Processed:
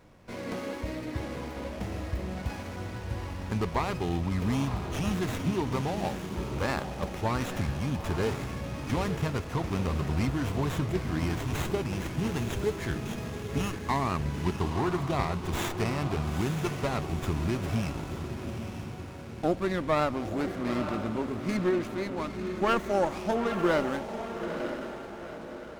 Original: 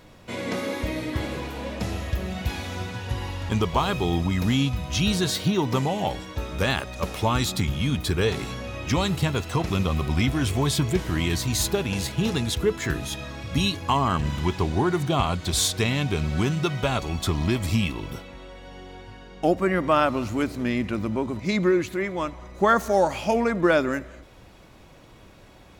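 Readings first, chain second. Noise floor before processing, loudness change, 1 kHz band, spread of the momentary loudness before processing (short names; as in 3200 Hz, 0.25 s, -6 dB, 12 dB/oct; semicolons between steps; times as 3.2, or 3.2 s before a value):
-49 dBFS, -6.0 dB, -5.5 dB, 11 LU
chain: diffused feedback echo 0.906 s, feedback 46%, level -7 dB; running maximum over 9 samples; gain -6 dB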